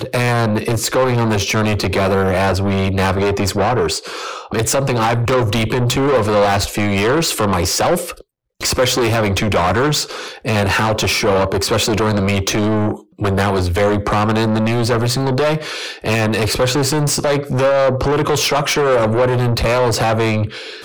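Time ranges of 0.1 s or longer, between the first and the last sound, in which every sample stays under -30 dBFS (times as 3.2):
8.21–8.61
12.99–13.19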